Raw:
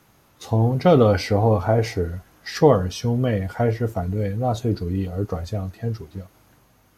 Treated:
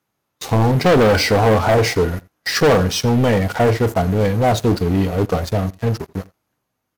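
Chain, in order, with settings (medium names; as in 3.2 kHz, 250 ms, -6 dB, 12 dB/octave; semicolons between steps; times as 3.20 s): high-pass 140 Hz 6 dB/octave; waveshaping leveller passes 5; delay 84 ms -23 dB; trim -6.5 dB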